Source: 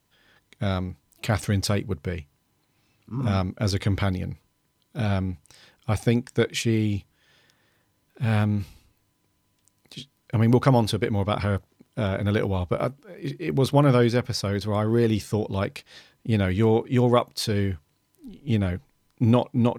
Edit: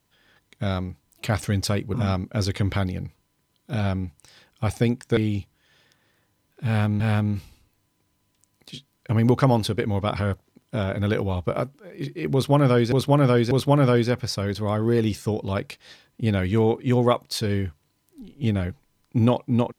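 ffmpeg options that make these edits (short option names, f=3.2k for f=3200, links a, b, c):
-filter_complex "[0:a]asplit=6[a][b][c][d][e][f];[a]atrim=end=1.942[g];[b]atrim=start=3.198:end=6.432[h];[c]atrim=start=6.748:end=8.582[i];[d]atrim=start=8.238:end=14.162[j];[e]atrim=start=13.568:end=14.162[k];[f]atrim=start=13.568[l];[g][h]acrossfade=d=0.004:c1=hsin:c2=hsin[m];[m][i]acrossfade=d=0.004:c1=hsin:c2=hsin[n];[n][j]acrossfade=d=0.004:c1=hsin:c2=hsin[o];[o][k]acrossfade=d=0.004:c1=hsin:c2=hsin[p];[p][l]acrossfade=d=0.004:c1=hsin:c2=hsin"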